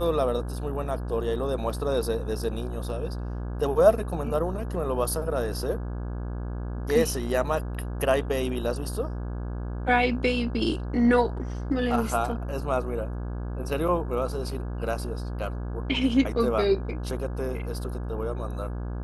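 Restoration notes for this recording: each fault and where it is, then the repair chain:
mains buzz 60 Hz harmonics 28 −32 dBFS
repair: hum removal 60 Hz, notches 28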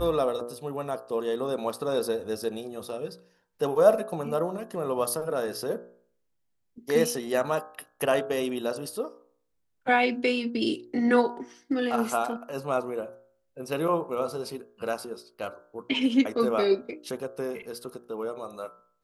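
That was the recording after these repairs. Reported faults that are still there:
none of them is left

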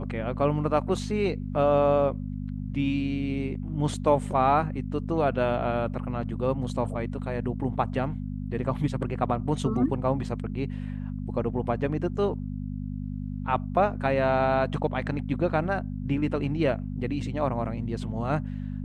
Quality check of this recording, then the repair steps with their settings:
mains hum 50 Hz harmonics 5 −33 dBFS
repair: hum removal 50 Hz, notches 5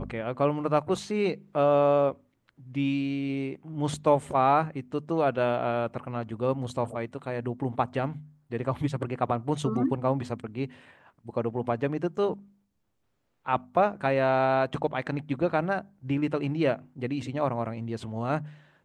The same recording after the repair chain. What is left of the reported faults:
none of them is left

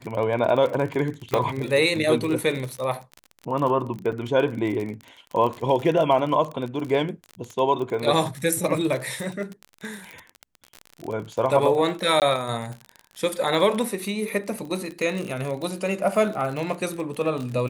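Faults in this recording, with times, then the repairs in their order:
surface crackle 37 per second −28 dBFS
0:01.34: click −8 dBFS
0:04.12–0:04.13: drop-out 6.2 ms
0:12.20–0:12.22: drop-out 18 ms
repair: click removal
repair the gap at 0:04.12, 6.2 ms
repair the gap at 0:12.20, 18 ms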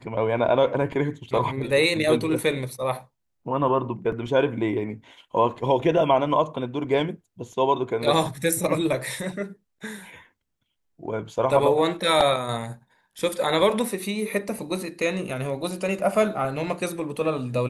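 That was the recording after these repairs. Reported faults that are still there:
none of them is left

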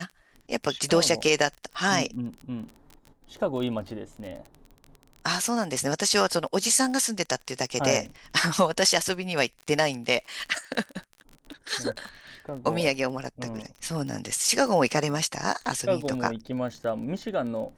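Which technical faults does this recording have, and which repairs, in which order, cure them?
surface crackle 24 per second −34 dBFS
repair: click removal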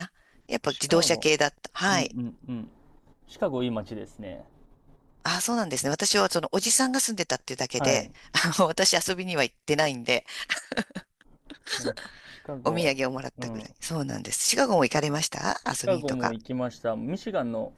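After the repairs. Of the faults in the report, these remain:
none of them is left

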